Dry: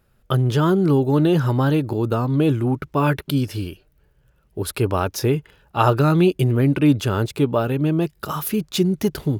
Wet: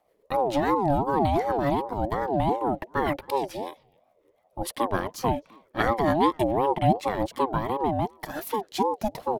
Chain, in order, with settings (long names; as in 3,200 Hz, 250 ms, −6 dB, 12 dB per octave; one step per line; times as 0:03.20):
rotating-speaker cabinet horn 7 Hz
far-end echo of a speakerphone 260 ms, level −25 dB
ring modulator whose carrier an LFO sweeps 560 Hz, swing 25%, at 2.7 Hz
level −2 dB